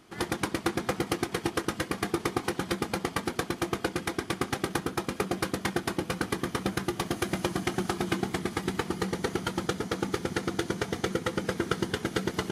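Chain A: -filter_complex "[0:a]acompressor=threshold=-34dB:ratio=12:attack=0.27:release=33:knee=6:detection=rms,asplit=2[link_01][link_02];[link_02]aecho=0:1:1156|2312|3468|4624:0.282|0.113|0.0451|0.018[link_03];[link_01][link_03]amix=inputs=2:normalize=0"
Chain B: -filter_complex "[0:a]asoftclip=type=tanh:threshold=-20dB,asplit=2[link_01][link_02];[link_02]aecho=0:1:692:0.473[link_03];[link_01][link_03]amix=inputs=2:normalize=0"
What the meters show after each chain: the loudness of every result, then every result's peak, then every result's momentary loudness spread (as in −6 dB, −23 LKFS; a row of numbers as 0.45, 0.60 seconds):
−41.0, −32.0 LKFS; −29.5, −17.5 dBFS; 2, 1 LU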